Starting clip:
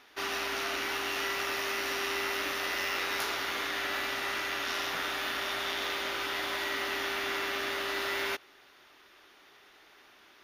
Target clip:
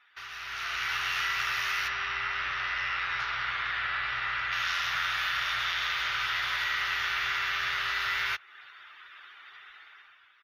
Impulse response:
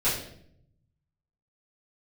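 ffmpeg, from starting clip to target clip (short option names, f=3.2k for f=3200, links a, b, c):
-filter_complex "[0:a]acompressor=threshold=-41dB:ratio=2.5,asplit=3[a][b][c];[a]afade=t=out:st=1.87:d=0.02[d];[b]aemphasis=mode=reproduction:type=75fm,afade=t=in:st=1.87:d=0.02,afade=t=out:st=4.51:d=0.02[e];[c]afade=t=in:st=4.51:d=0.02[f];[d][e][f]amix=inputs=3:normalize=0,afftdn=nr=18:nf=-60,firequalizer=gain_entry='entry(130,0);entry(220,-28);entry(1300,0);entry(8300,-9)':delay=0.05:min_phase=1,dynaudnorm=f=120:g=11:m=13dB"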